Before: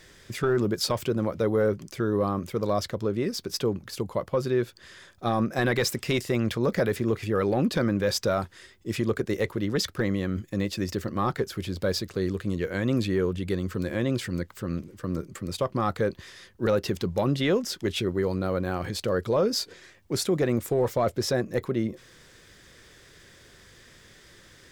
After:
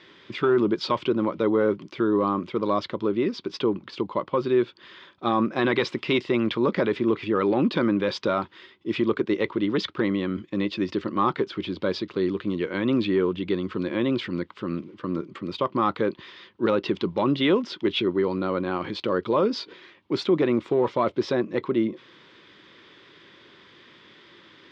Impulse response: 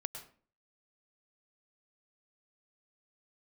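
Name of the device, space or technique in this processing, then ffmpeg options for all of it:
kitchen radio: -af "highpass=220,equalizer=f=320:t=q:w=4:g=4,equalizer=f=490:t=q:w=4:g=-5,equalizer=f=700:t=q:w=4:g=-7,equalizer=f=1k:t=q:w=4:g=5,equalizer=f=1.7k:t=q:w=4:g=-6,equalizer=f=3.3k:t=q:w=4:g=3,lowpass=f=3.7k:w=0.5412,lowpass=f=3.7k:w=1.3066,volume=4.5dB"

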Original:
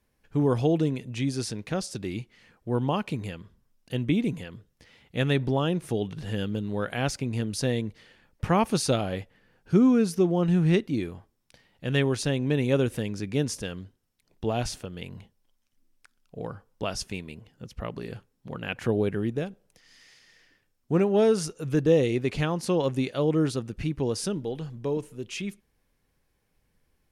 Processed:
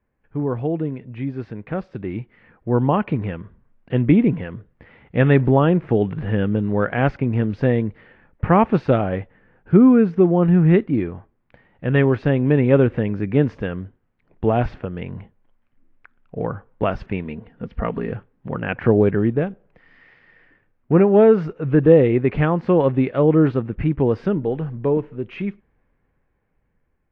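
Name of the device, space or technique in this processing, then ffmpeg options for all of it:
action camera in a waterproof case: -filter_complex "[0:a]asettb=1/sr,asplit=3[a][b][c];[a]atrim=end=17.244[d];[b]atrim=start=17.24:end=18.12,asetpts=PTS-STARTPTS,afade=t=in:d=0.004:c=qsin,afade=t=out:st=0.876:d=0.004:c=qsin,aecho=1:1:4.3:0.48,atrim=end_sample=38808[e];[c]atrim=start=18.116[f];[d][e]acrossfade=d=0.004:c1=hsin:c2=qsin[g];[g][f]acrossfade=d=0.004:c1=qsin:c2=hsin,lowpass=f=2.1k:w=0.5412,lowpass=f=2.1k:w=1.3066,dynaudnorm=f=670:g=7:m=12dB" -ar 22050 -c:a aac -b:a 48k

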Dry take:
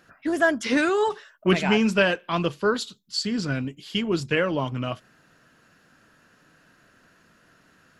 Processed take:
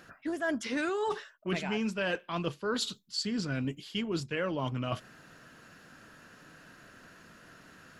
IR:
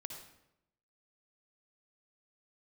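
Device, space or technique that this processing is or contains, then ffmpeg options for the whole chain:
compression on the reversed sound: -af "areverse,acompressor=threshold=-35dB:ratio=5,areverse,volume=4dB"

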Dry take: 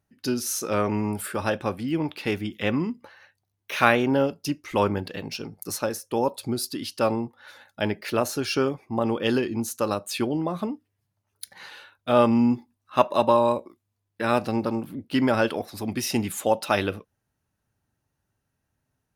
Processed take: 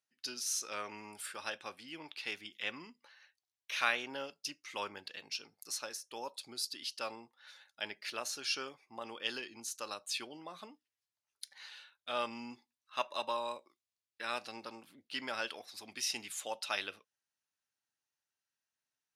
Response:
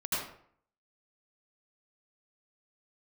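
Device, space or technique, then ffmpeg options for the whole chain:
piezo pickup straight into a mixer: -af "lowpass=5k,aderivative,volume=2dB"

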